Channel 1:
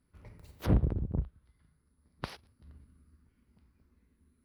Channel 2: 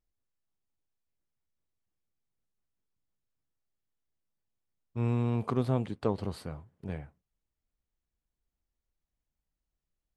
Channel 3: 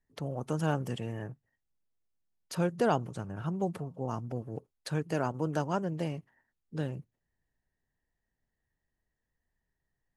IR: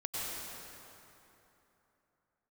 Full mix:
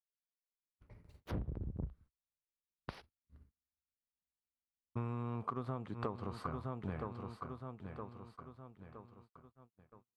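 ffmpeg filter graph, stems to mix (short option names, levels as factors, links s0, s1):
-filter_complex "[0:a]adelay=650,volume=0.473[s0];[1:a]equalizer=f=1200:t=o:w=0.66:g=12.5,volume=0.944,asplit=2[s1][s2];[s2]volume=0.237,aecho=0:1:966|1932|2898|3864|4830|5796:1|0.44|0.194|0.0852|0.0375|0.0165[s3];[s0][s1][s3]amix=inputs=3:normalize=0,aemphasis=mode=reproduction:type=cd,agate=range=0.0141:threshold=0.00112:ratio=16:detection=peak,acompressor=threshold=0.0178:ratio=16"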